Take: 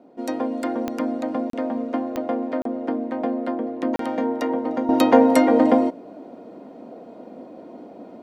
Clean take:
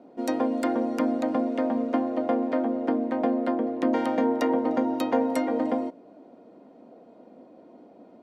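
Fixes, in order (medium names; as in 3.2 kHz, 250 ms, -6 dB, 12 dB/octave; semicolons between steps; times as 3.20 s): de-click; interpolate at 1.50/2.62/3.96 s, 33 ms; trim 0 dB, from 4.89 s -10 dB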